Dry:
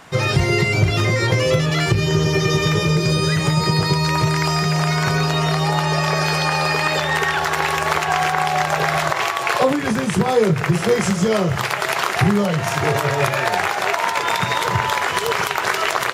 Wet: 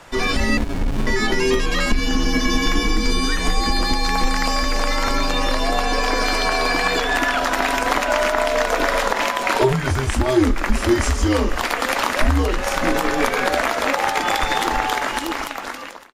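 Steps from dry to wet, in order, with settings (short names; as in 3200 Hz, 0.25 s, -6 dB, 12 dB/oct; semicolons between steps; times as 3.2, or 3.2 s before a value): ending faded out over 1.40 s; frequency shift -130 Hz; 0.57–1.07 running maximum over 65 samples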